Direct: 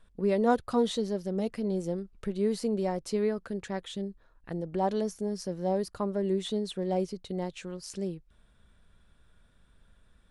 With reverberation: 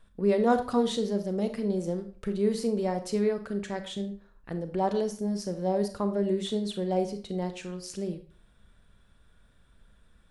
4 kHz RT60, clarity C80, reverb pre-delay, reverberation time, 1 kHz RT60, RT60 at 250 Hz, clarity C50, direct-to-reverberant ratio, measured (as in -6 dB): 0.35 s, 15.0 dB, 30 ms, 0.40 s, 0.45 s, 0.40 s, 11.0 dB, 7.5 dB